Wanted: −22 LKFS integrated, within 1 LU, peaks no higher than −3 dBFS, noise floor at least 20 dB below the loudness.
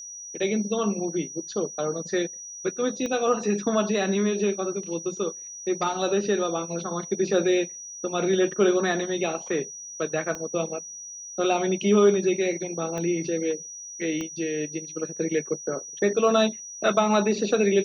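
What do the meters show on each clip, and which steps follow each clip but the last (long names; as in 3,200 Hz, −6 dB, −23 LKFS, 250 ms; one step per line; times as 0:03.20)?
number of clicks 4; interfering tone 5,800 Hz; level of the tone −37 dBFS; integrated loudness −26.0 LKFS; sample peak −8.5 dBFS; target loudness −22.0 LKFS
→ click removal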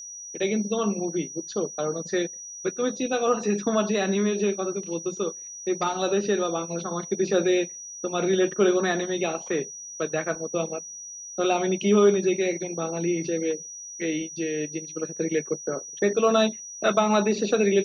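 number of clicks 0; interfering tone 5,800 Hz; level of the tone −37 dBFS
→ notch filter 5,800 Hz, Q 30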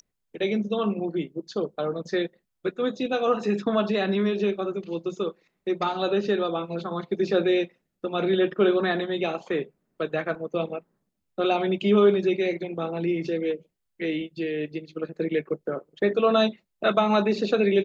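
interfering tone none found; integrated loudness −26.0 LKFS; sample peak −8.5 dBFS; target loudness −22.0 LKFS
→ level +4 dB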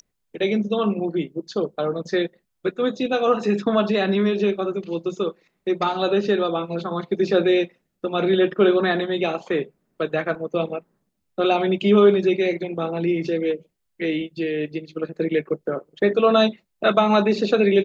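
integrated loudness −22.0 LKFS; sample peak −4.5 dBFS; background noise floor −75 dBFS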